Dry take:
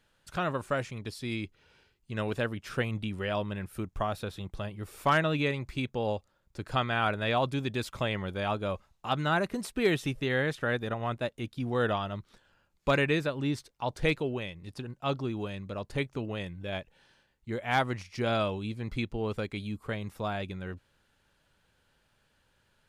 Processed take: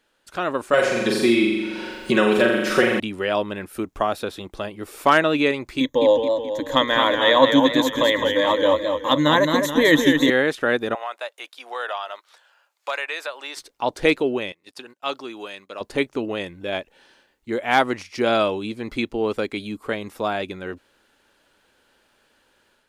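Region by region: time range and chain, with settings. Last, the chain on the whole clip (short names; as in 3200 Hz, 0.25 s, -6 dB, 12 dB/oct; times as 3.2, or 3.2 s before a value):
0.73–3 comb 5.4 ms, depth 93% + flutter echo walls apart 7.3 m, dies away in 0.82 s + three-band squash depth 100%
5.8–10.3 ripple EQ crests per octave 1.1, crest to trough 17 dB + warbling echo 0.214 s, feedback 50%, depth 107 cents, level -5.5 dB
10.95–13.57 HPF 650 Hz 24 dB/oct + compressor 2:1, threshold -37 dBFS
14.52–15.81 HPF 1200 Hz 6 dB/oct + gate -58 dBFS, range -11 dB
whole clip: resonant low shelf 200 Hz -11 dB, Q 1.5; AGC gain up to 6 dB; gain +3 dB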